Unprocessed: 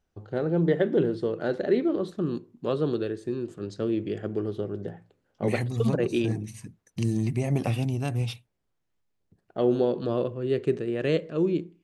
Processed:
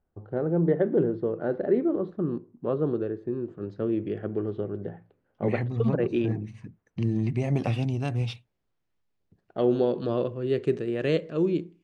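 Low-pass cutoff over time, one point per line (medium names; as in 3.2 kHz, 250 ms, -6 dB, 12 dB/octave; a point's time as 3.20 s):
3.38 s 1.3 kHz
4.09 s 2.2 kHz
7.09 s 2.2 kHz
7.49 s 5.3 kHz
9.94 s 5.3 kHz
10.64 s 8.8 kHz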